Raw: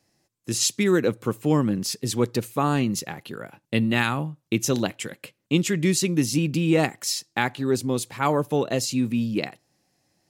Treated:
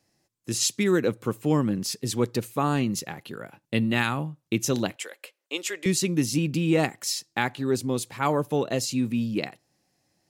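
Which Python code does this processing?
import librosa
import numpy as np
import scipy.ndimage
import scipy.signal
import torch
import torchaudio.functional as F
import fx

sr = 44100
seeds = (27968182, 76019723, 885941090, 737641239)

y = fx.highpass(x, sr, hz=450.0, slope=24, at=(4.96, 5.86))
y = y * 10.0 ** (-2.0 / 20.0)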